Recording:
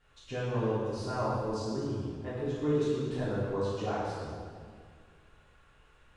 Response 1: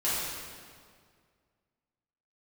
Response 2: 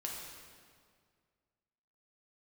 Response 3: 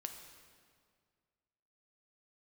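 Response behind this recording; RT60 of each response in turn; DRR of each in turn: 1; 2.0, 2.0, 2.0 seconds; −11.0, −2.5, 4.5 decibels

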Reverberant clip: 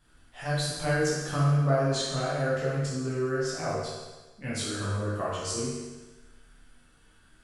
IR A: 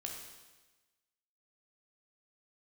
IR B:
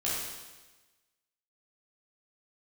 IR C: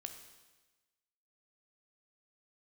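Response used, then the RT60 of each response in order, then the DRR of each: B; 1.2, 1.2, 1.2 seconds; 0.0, −8.5, 5.5 decibels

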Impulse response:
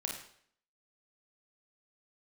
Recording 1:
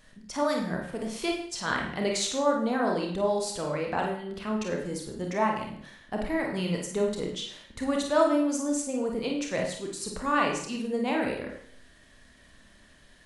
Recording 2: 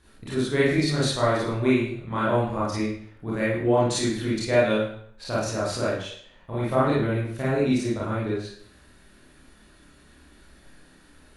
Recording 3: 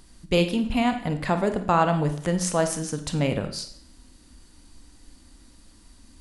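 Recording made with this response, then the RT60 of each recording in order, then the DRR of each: 1; 0.60, 0.60, 0.60 seconds; 0.0, −8.5, 7.0 decibels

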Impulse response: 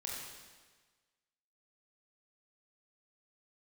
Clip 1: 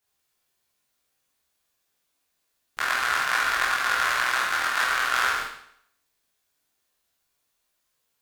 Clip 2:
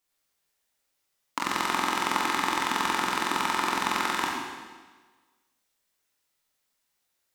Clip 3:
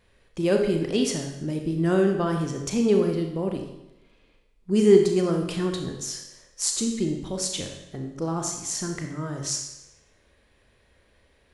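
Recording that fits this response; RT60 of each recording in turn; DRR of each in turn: 2; 0.70, 1.4, 0.90 seconds; −7.0, −4.0, 3.0 decibels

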